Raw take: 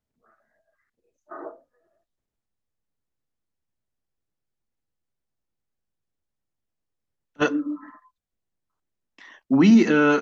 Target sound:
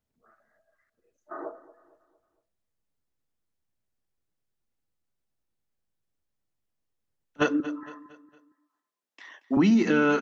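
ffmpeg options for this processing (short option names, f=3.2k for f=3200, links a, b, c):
-filter_complex "[0:a]asettb=1/sr,asplit=3[a][b][c];[a]atrim=end=7.604[d];[b]atrim=start=7.6:end=9.57,asetpts=PTS-STARTPTS,afade=t=in:d=0.004:c=qsin,afade=t=out:st=1.966:d=0.004:c=qsin,highpass=360[e];[c]atrim=start=9.566[f];[d][e]acrossfade=d=0.004:c1=hsin:c2=qsin[g];[g][f]acrossfade=d=0.004:c1=qsin:c2=hsin,aecho=1:1:229|458|687|916:0.126|0.0554|0.0244|0.0107,acompressor=threshold=-19dB:ratio=3"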